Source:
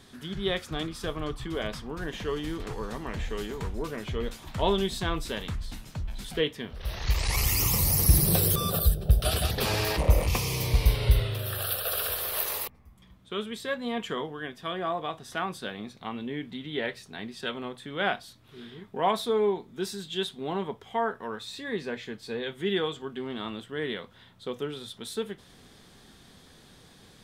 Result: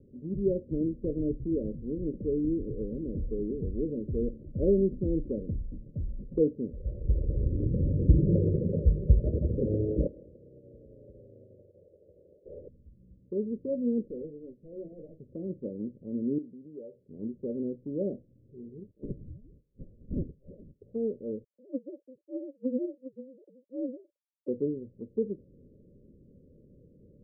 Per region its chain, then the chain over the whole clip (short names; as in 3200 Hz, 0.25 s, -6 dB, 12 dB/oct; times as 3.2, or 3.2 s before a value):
1.54–4.43 bell 720 Hz -13.5 dB 0.39 oct + upward compressor, threshold -34 dBFS
10.07–12.46 differentiator + negative-ratio compressor -36 dBFS + spectral compressor 4:1
14.05–15.2 notches 60/120/180 Hz + tube stage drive 33 dB, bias 0.75
16.38–17.09 compressor 2.5:1, threshold -37 dBFS + RIAA curve recording
18.91–20.81 inverted band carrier 3400 Hz + low shelf 260 Hz +7.5 dB
21.44–24.48 sine-wave speech + HPF 440 Hz 24 dB/oct + ring modulator 130 Hz
whole clip: Chebyshev low-pass 580 Hz, order 8; dynamic EQ 280 Hz, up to +8 dB, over -46 dBFS, Q 1.4